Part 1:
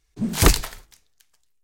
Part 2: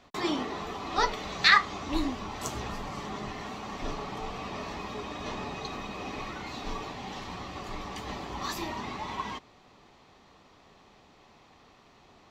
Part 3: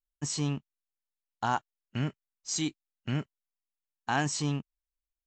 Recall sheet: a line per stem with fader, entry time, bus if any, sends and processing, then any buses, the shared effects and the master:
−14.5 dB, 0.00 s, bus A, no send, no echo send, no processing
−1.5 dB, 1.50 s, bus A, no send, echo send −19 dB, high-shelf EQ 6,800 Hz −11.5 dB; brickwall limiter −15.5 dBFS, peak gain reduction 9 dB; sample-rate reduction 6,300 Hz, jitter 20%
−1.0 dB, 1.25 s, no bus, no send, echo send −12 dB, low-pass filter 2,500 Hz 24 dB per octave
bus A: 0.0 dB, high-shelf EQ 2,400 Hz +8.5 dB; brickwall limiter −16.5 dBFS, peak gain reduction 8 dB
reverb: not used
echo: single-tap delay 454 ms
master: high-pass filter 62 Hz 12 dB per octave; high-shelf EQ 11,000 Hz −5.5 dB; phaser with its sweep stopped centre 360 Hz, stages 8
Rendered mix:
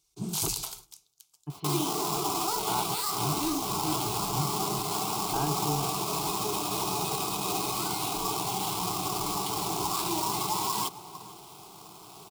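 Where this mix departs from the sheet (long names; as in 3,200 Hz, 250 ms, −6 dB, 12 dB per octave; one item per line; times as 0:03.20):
stem 1 −14.5 dB → −3.0 dB
stem 2 −1.5 dB → +10.0 dB
master: missing high-shelf EQ 11,000 Hz −5.5 dB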